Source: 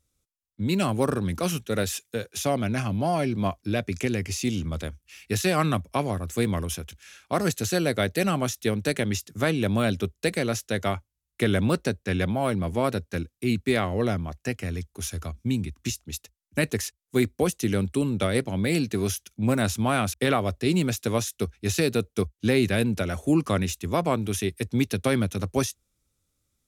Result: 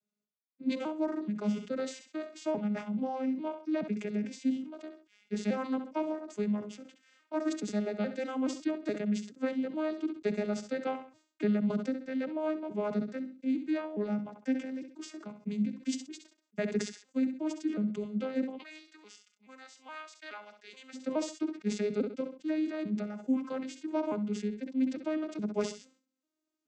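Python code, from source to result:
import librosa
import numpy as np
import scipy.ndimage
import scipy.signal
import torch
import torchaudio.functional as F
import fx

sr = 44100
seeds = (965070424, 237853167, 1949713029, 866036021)

y = fx.vocoder_arp(x, sr, chord='major triad', root=56, every_ms=423)
y = fx.echo_feedback(y, sr, ms=66, feedback_pct=21, wet_db=-14.5)
y = fx.rider(y, sr, range_db=4, speed_s=0.5)
y = fx.highpass(y, sr, hz=1400.0, slope=12, at=(18.57, 20.93), fade=0.02)
y = fx.sustainer(y, sr, db_per_s=130.0)
y = F.gain(torch.from_numpy(y), -6.5).numpy()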